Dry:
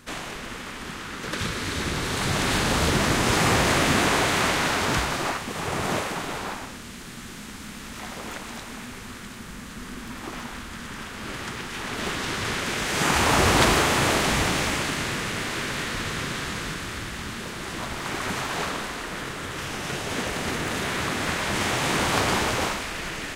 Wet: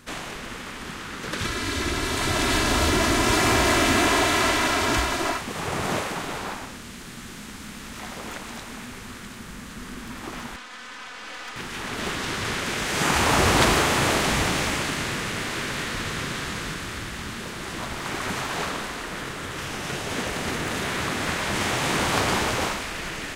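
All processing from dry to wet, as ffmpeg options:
ffmpeg -i in.wav -filter_complex "[0:a]asettb=1/sr,asplit=3[link_01][link_02][link_03];[link_01]atrim=end=1.444[link_04];[link_02]atrim=start=1.44:end=5.41,asetpts=PTS-STARTPTS,afade=type=in:duration=0.004:curve=qsin,afade=type=out:start_time=3.966:duration=0.004:curve=qsin,aecho=1:1:3:0.65,atrim=end_sample=175077,asoftclip=type=hard:threshold=-13.5dB[link_05];[link_03]atrim=start=5.406[link_06];[link_04][link_05]acrossfade=duration=0.004:curve1=hsin:curve2=qsin[link_07];[link_07][link_06]acrossfade=duration=0.004:curve1=qsin:curve2=hsin,asettb=1/sr,asplit=3[link_08][link_09][link_10];[link_08]atrim=end=10.564[link_11];[link_09]atrim=start=10.56:end=11.56,asetpts=PTS-STARTPTS,afade=type=in:duration=0.004:curve=qsin,afade=type=out:start_time=0.996:duration=0.004:curve=qsin,highpass=540,lowpass=6500,aecho=1:1:4:0.86,atrim=end_sample=44100,aeval=exprs='(tanh(35.5*val(0)+0.5)-tanh(0.5))/35.5':channel_layout=same[link_12];[link_10]atrim=start=11.556[link_13];[link_11][link_12]acrossfade=duration=0.004:curve1=hsin:curve2=qsin[link_14];[link_14][link_13]acrossfade=duration=0.004:curve1=qsin:curve2=hsin" out.wav

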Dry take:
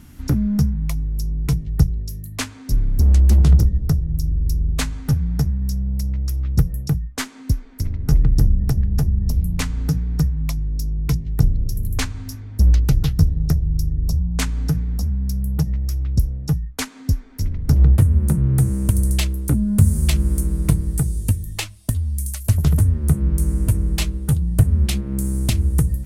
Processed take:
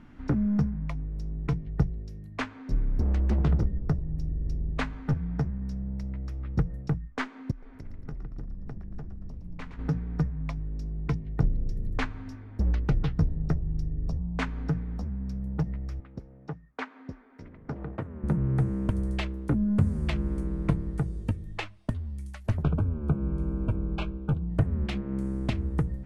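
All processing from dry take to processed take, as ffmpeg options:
ffmpeg -i in.wav -filter_complex "[0:a]asettb=1/sr,asplit=3[link_01][link_02][link_03];[link_01]atrim=end=7.514[link_04];[link_02]atrim=start=7.51:end=9.79,asetpts=PTS-STARTPTS,afade=type=in:duration=0.004:curve=qsin,afade=type=out:start_time=2.276:duration=0.004:curve=qsin,acompressor=threshold=-33dB:ratio=2.5:attack=3.2:release=140:knee=1:detection=peak,asplit=6[link_05][link_06][link_07][link_08][link_09][link_10];[link_06]adelay=115,afreqshift=-72,volume=-10dB[link_11];[link_07]adelay=230,afreqshift=-144,volume=-16dB[link_12];[link_08]adelay=345,afreqshift=-216,volume=-22dB[link_13];[link_09]adelay=460,afreqshift=-288,volume=-28.1dB[link_14];[link_10]adelay=575,afreqshift=-360,volume=-34.1dB[link_15];[link_05][link_11][link_12][link_13][link_14][link_15]amix=inputs=6:normalize=0,atrim=end_sample=100548[link_16];[link_03]atrim=start=9.786[link_17];[link_04][link_16]acrossfade=duration=0.004:curve1=hsin:curve2=qsin[link_18];[link_18][link_17]acrossfade=duration=0.004:curve1=qsin:curve2=hsin,asettb=1/sr,asplit=3[link_19][link_20][link_21];[link_19]atrim=end=16.004[link_22];[link_20]atrim=start=16:end=18.24,asetpts=PTS-STARTPTS,afade=type=in:duration=0.004:curve=qsin,afade=type=out:start_time=2.236:duration=0.004:curve=qsin,highpass=frequency=480:poles=1,aemphasis=mode=reproduction:type=75kf[link_23];[link_21]atrim=start=18.236[link_24];[link_22][link_23]acrossfade=duration=0.004:curve1=hsin:curve2=qsin[link_25];[link_25][link_24]acrossfade=duration=0.004:curve1=qsin:curve2=hsin,asettb=1/sr,asplit=3[link_26][link_27][link_28];[link_26]atrim=end=22.634[link_29];[link_27]atrim=start=22.63:end=24.5,asetpts=PTS-STARTPTS,afade=type=in:duration=0.004:curve=qsin,afade=type=out:start_time=1.866:duration=0.004:curve=qsin,asuperstop=centerf=1900:order=12:qfactor=3.4,bass=frequency=250:gain=0,treble=frequency=4000:gain=-11[link_30];[link_28]atrim=start=24.496[link_31];[link_29][link_30]acrossfade=duration=0.004:curve1=hsin:curve2=qsin[link_32];[link_32][link_31]acrossfade=duration=0.004:curve1=qsin:curve2=hsin,lowpass=1900,equalizer=frequency=72:width=0.55:gain=-12,volume=-1dB" out.wav

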